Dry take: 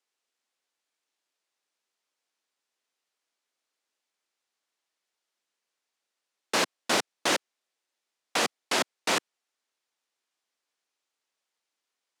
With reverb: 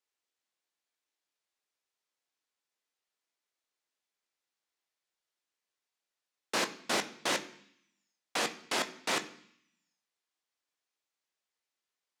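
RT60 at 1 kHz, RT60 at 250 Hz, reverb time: 0.70 s, 0.85 s, 0.65 s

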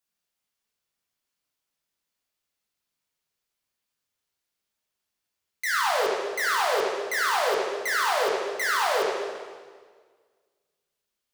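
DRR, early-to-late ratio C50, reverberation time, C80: -4.0 dB, 0.0 dB, 1.6 s, 2.0 dB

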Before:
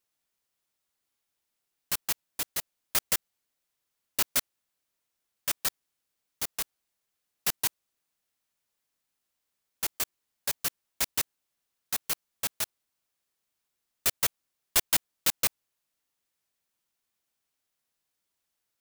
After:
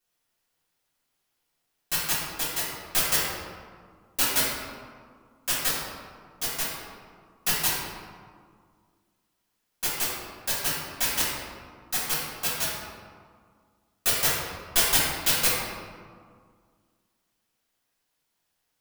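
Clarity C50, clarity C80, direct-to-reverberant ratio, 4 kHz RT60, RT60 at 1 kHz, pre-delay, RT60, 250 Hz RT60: -1.0 dB, 1.5 dB, -9.5 dB, 0.95 s, 1.9 s, 3 ms, 1.9 s, 2.4 s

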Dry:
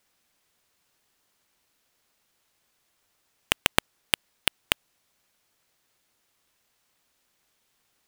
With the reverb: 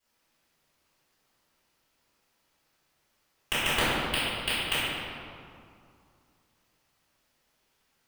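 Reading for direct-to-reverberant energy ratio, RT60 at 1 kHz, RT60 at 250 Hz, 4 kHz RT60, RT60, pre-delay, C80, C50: -15.0 dB, 2.4 s, 2.7 s, 1.4 s, 2.4 s, 3 ms, -1.5 dB, -4.0 dB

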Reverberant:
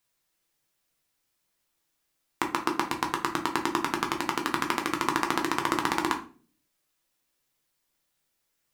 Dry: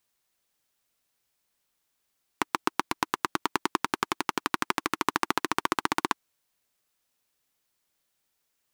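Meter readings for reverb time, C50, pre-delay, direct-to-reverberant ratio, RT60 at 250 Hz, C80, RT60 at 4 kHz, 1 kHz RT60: 0.40 s, 11.0 dB, 6 ms, 2.0 dB, 0.60 s, 16.0 dB, 0.30 s, 0.35 s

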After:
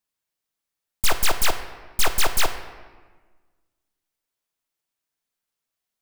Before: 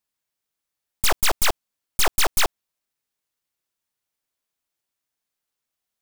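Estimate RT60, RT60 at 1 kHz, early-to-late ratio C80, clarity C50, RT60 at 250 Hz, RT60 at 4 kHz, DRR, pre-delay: 1.4 s, 1.4 s, 11.5 dB, 10.0 dB, 1.7 s, 0.95 s, 7.5 dB, 3 ms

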